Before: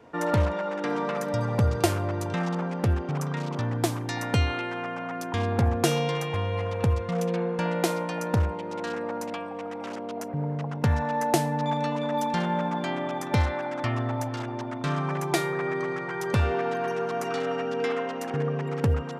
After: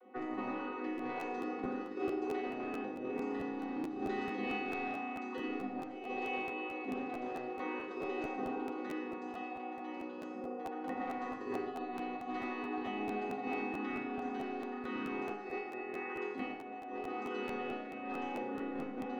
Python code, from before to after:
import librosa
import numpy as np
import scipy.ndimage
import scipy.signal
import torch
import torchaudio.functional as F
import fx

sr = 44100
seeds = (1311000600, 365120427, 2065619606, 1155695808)

p1 = fx.chord_vocoder(x, sr, chord='bare fifth', root=59)
p2 = scipy.signal.sosfilt(scipy.signal.butter(12, 200.0, 'highpass', fs=sr, output='sos'), p1)
p3 = fx.room_flutter(p2, sr, wall_m=5.5, rt60_s=0.31, at=(2.38, 3.03))
p4 = fx.rev_fdn(p3, sr, rt60_s=2.4, lf_ratio=0.8, hf_ratio=0.4, size_ms=11.0, drr_db=-2.5)
p5 = fx.over_compress(p4, sr, threshold_db=-28.0, ratio=-0.5)
p6 = p5 + fx.echo_single(p5, sr, ms=112, db=-11.0, dry=0)
p7 = np.clip(p6, -10.0 ** (-21.0 / 20.0), 10.0 ** (-21.0 / 20.0))
p8 = scipy.signal.sosfilt(scipy.signal.butter(2, 5100.0, 'lowpass', fs=sr, output='sos'), p7)
p9 = fx.high_shelf(p8, sr, hz=3900.0, db=-7.5)
p10 = fx.resonator_bank(p9, sr, root=44, chord='major', decay_s=0.81)
p11 = fx.buffer_crackle(p10, sr, first_s=0.97, period_s=0.22, block=512, kind='repeat')
y = p11 * librosa.db_to_amplitude(14.5)